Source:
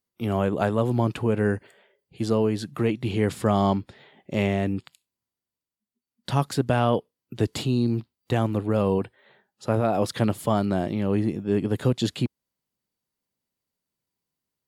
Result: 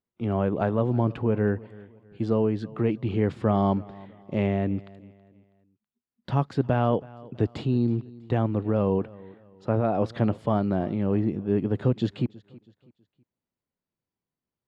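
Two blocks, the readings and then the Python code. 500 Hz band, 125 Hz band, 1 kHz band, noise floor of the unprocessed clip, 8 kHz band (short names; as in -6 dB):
-1.5 dB, -0.5 dB, -2.5 dB, under -85 dBFS, under -20 dB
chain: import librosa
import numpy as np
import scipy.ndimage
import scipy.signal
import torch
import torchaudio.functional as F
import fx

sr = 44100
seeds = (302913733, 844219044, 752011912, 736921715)

y = fx.spacing_loss(x, sr, db_at_10k=29)
y = fx.echo_feedback(y, sr, ms=324, feedback_pct=36, wet_db=-21.5)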